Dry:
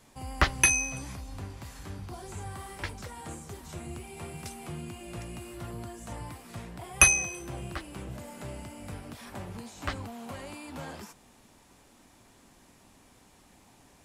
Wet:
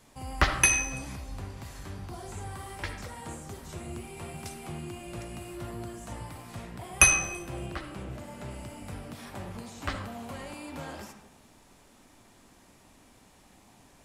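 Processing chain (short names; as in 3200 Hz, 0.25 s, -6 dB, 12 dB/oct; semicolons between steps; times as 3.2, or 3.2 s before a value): 7.66–8.51 high shelf 6800 Hz -6.5 dB; on a send: reverb RT60 0.85 s, pre-delay 20 ms, DRR 6 dB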